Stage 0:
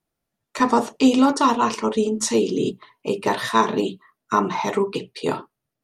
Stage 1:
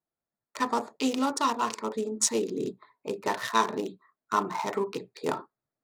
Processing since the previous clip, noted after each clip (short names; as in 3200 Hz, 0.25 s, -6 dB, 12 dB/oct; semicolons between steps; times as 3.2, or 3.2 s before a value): Wiener smoothing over 15 samples; tilt +2.5 dB/oct; vocal rider within 4 dB 2 s; gain -6 dB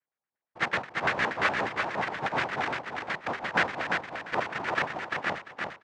noise vocoder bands 1; LFO low-pass square 8.4 Hz 830–1800 Hz; on a send: feedback echo 0.345 s, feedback 18%, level -4 dB